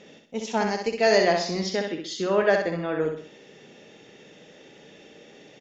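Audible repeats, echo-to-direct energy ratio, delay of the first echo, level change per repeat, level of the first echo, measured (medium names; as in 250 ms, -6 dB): 4, -4.0 dB, 64 ms, -7.5 dB, -5.0 dB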